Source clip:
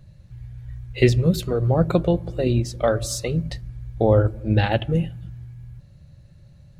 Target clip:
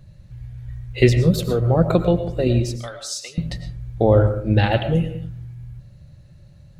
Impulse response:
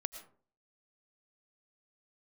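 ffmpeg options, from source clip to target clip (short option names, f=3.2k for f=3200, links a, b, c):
-filter_complex "[0:a]asettb=1/sr,asplit=3[a][b][c];[a]atrim=end=2.764[d];[b]atrim=start=2.76:end=3.38,asetpts=PTS-STARTPTS,afade=t=in:d=0.004:c=qsin,afade=t=out:st=0.616:d=0.004:c=qsin,bandpass=f=4.6k:t=q:w=1:csg=0[e];[c]atrim=start=3.376[f];[d][e]acrossfade=d=0.004:c1=hsin:c2=qsin[g];[g][f]acrossfade=d=0.004:c1=qsin:c2=hsin[h];[1:a]atrim=start_sample=2205[i];[h][i]afir=irnorm=-1:irlink=0,volume=3dB"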